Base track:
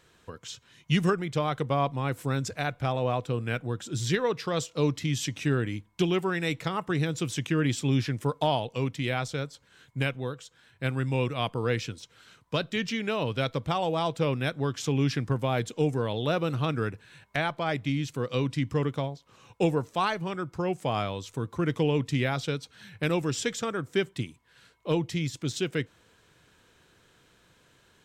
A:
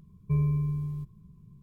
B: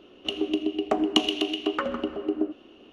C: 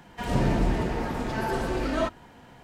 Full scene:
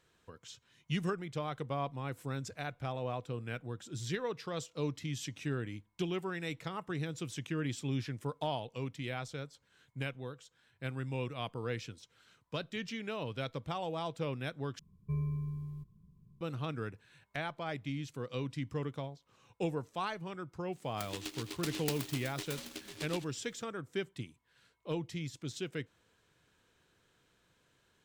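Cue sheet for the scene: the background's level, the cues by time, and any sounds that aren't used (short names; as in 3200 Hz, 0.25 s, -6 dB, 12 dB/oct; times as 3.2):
base track -10 dB
14.79 replace with A -9 dB
20.72 add B -17 dB + noise-modulated delay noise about 3200 Hz, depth 0.42 ms
not used: C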